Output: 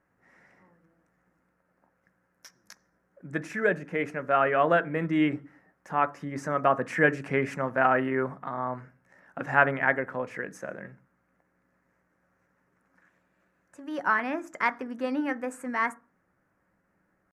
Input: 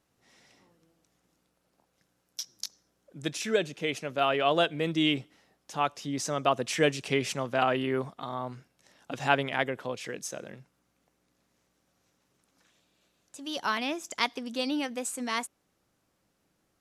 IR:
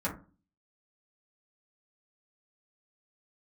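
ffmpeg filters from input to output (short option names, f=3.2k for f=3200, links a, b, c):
-filter_complex "[0:a]highshelf=f=2.5k:t=q:w=3:g=-12.5,atempo=0.97,asplit=2[a][b];[1:a]atrim=start_sample=2205[c];[b][c]afir=irnorm=-1:irlink=0,volume=-16.5dB[d];[a][d]amix=inputs=2:normalize=0"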